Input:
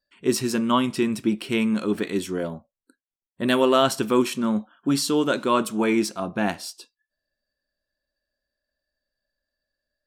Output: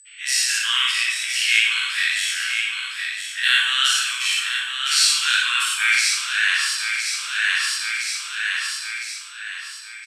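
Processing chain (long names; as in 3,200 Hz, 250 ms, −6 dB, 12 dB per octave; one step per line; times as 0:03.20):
every bin's largest magnitude spread in time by 120 ms
repeating echo 1,012 ms, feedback 36%, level −8.5 dB
dense smooth reverb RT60 0.99 s, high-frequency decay 0.8×, DRR −0.5 dB
automatic gain control gain up to 16 dB
steady tone 8,000 Hz −44 dBFS
dynamic equaliser 8,100 Hz, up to +5 dB, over −43 dBFS, Q 3.2
Chebyshev high-pass filter 1,600 Hz, order 4
floating-point word with a short mantissa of 4 bits
elliptic low-pass filter 12,000 Hz, stop band 50 dB
parametric band 2,400 Hz +12.5 dB 2.5 octaves
level −6 dB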